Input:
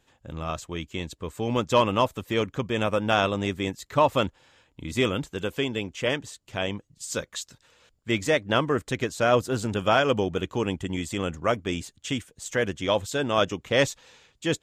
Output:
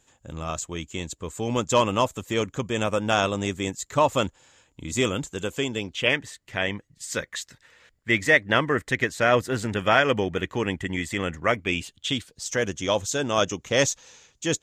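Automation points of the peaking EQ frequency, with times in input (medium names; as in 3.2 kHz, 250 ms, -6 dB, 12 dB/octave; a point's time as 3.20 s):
peaking EQ +12.5 dB 0.47 oct
5.75 s 7.1 kHz
6.17 s 1.9 kHz
11.48 s 1.9 kHz
12.61 s 6.3 kHz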